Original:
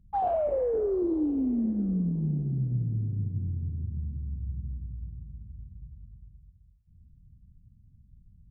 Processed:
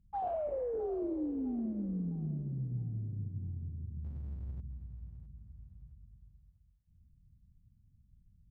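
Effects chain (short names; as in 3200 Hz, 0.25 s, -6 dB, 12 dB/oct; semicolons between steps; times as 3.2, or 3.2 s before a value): 4.04–4.61 power-law curve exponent 0.7; thinning echo 0.658 s, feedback 41%, high-pass 560 Hz, level -12 dB; gain -8.5 dB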